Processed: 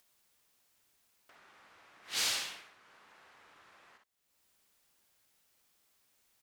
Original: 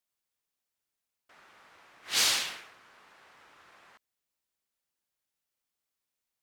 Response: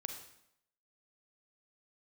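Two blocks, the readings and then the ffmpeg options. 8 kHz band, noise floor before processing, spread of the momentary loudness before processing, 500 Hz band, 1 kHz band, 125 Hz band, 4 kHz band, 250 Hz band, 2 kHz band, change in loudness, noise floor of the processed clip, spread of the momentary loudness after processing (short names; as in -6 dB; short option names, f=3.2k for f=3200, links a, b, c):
-6.5 dB, under -85 dBFS, 15 LU, -6.0 dB, -6.5 dB, -6.0 dB, -6.5 dB, -6.5 dB, -6.5 dB, -7.0 dB, -76 dBFS, 14 LU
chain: -af "acompressor=mode=upward:threshold=-48dB:ratio=2.5,aecho=1:1:53|63:0.335|0.376,volume=-7.5dB"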